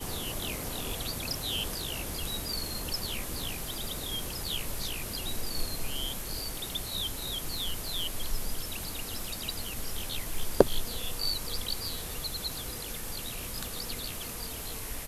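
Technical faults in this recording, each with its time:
crackle 65 per s -38 dBFS

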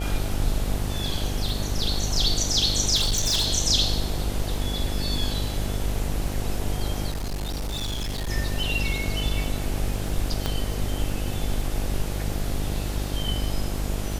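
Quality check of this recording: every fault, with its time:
buzz 50 Hz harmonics 17 -29 dBFS
crackle 17 per s -30 dBFS
2.95–3.48 s: clipped -19 dBFS
7.10–8.30 s: clipped -25.5 dBFS
10.46 s: pop -11 dBFS

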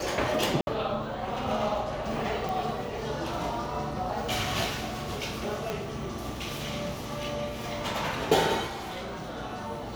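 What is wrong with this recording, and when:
0.61–0.67 s: dropout 61 ms
2.49 s: pop
5.70 s: pop -17 dBFS
8.66–9.38 s: clipped -32.5 dBFS

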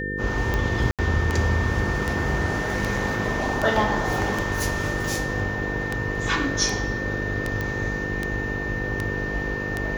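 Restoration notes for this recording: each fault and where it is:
buzz 50 Hz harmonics 10 -31 dBFS
tick 78 rpm -11 dBFS
whine 1.8 kHz -29 dBFS
0.91–0.99 s: dropout 77 ms
7.61 s: pop -14 dBFS

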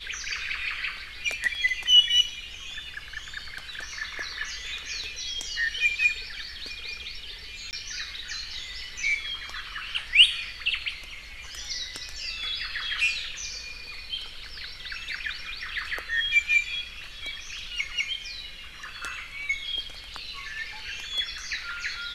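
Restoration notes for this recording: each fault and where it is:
7.71–7.73 s: dropout 19 ms

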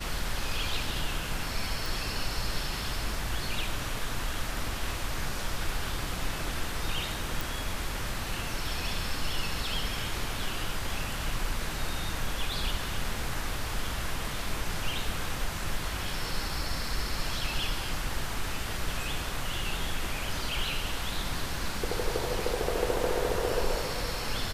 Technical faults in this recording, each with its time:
1.86 s: pop
7.41 s: pop

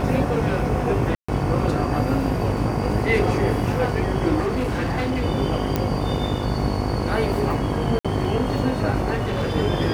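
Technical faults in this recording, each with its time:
buzz 50 Hz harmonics 22 -27 dBFS
1.15–1.28 s: dropout 135 ms
4.40–5.23 s: clipped -19.5 dBFS
5.76 s: pop -8 dBFS
7.99–8.05 s: dropout 56 ms
9.14–9.56 s: clipped -20 dBFS

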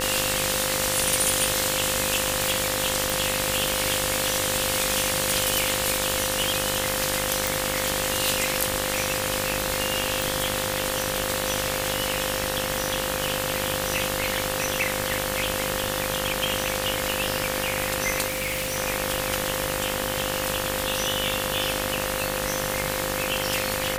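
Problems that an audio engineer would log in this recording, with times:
buzz 50 Hz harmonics 38 -31 dBFS
whine 520 Hz -31 dBFS
3.10 s: pop
7.47 s: pop
10.22 s: pop
18.27–18.77 s: clipped -23 dBFS

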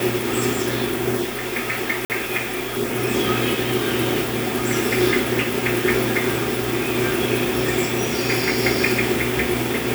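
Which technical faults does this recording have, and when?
2.05–2.10 s: dropout 48 ms

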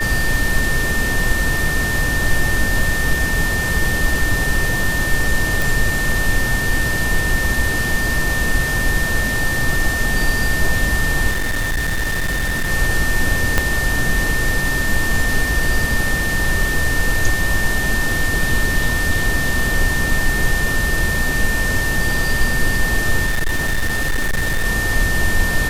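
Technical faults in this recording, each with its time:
whine 1.8 kHz -20 dBFS
5.62 s: pop
11.30–12.71 s: clipped -16 dBFS
13.58 s: pop 0 dBFS
23.26–24.65 s: clipped -14 dBFS

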